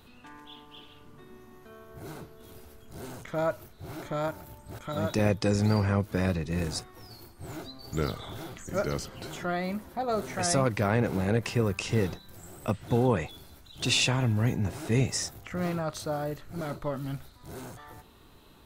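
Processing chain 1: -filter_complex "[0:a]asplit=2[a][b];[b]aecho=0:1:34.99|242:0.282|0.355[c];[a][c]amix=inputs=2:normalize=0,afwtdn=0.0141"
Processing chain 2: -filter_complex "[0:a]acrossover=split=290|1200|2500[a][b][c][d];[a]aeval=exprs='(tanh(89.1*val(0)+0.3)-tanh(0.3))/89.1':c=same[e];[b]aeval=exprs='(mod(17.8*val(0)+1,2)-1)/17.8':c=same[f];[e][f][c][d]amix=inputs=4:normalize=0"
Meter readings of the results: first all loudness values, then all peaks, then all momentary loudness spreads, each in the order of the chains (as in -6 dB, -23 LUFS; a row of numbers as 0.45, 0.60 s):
-29.5, -33.0 LUFS; -9.5, -12.5 dBFS; 18, 20 LU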